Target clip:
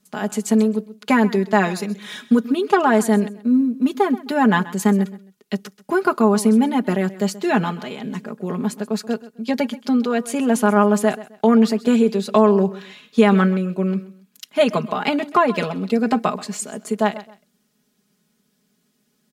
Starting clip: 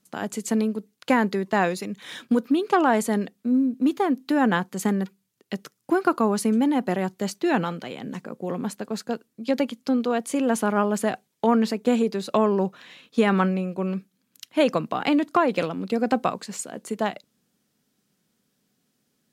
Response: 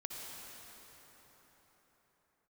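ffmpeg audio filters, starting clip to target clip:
-af "aecho=1:1:4.8:0.81,aecho=1:1:131|262:0.133|0.036,volume=1.26"

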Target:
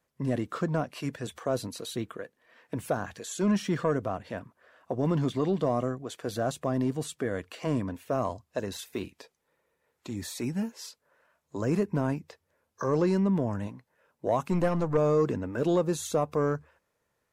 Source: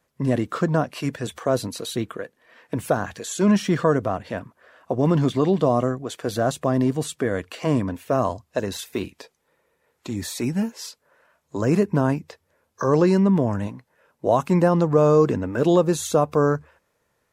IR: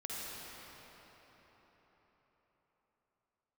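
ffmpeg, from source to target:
-filter_complex "[0:a]asoftclip=type=tanh:threshold=0.473,asplit=3[s0][s1][s2];[s0]afade=t=out:st=14.51:d=0.02[s3];[s1]aeval=exprs='0.398*(cos(1*acos(clip(val(0)/0.398,-1,1)))-cos(1*PI/2))+0.0631*(cos(4*acos(clip(val(0)/0.398,-1,1)))-cos(4*PI/2))':c=same,afade=t=in:st=14.51:d=0.02,afade=t=out:st=14.96:d=0.02[s4];[s2]afade=t=in:st=14.96:d=0.02[s5];[s3][s4][s5]amix=inputs=3:normalize=0,volume=0.447"

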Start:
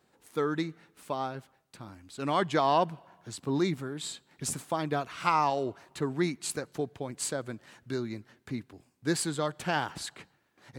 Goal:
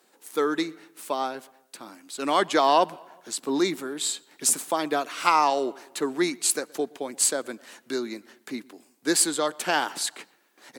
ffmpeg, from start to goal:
-filter_complex "[0:a]highpass=f=250:w=0.5412,highpass=f=250:w=1.3066,aemphasis=mode=production:type=cd,asplit=2[s0][s1];[s1]adelay=122,lowpass=f=2300:p=1,volume=0.0631,asplit=2[s2][s3];[s3]adelay=122,lowpass=f=2300:p=1,volume=0.53,asplit=2[s4][s5];[s5]adelay=122,lowpass=f=2300:p=1,volume=0.53[s6];[s2][s4][s6]amix=inputs=3:normalize=0[s7];[s0][s7]amix=inputs=2:normalize=0,volume=1.88"

